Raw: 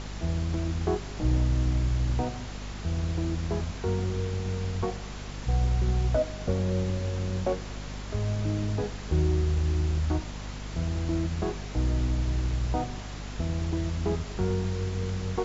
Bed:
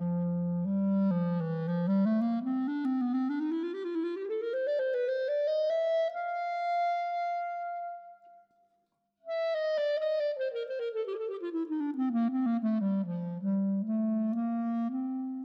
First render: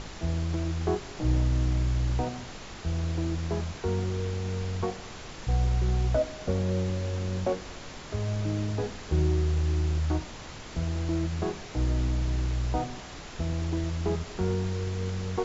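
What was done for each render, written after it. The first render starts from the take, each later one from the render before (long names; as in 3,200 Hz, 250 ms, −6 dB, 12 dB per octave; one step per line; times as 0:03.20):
hum removal 50 Hz, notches 5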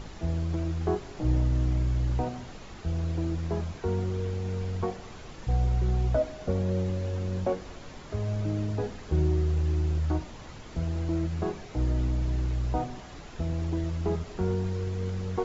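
broadband denoise 7 dB, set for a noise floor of −43 dBFS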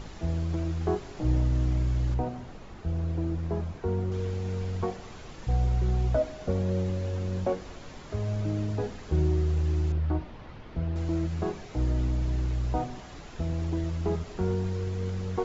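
0:02.14–0:04.12: high-shelf EQ 2,200 Hz −9 dB
0:09.92–0:10.96: high-frequency loss of the air 240 metres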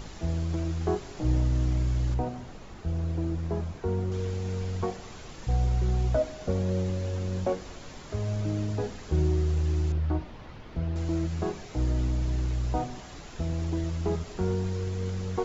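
high-shelf EQ 6,100 Hz +8.5 dB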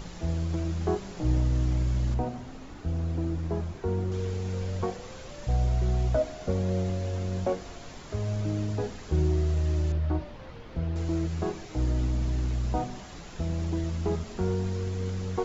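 mix in bed −18 dB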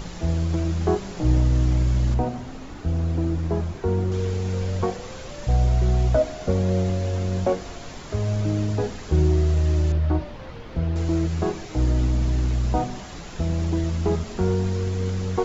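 level +6 dB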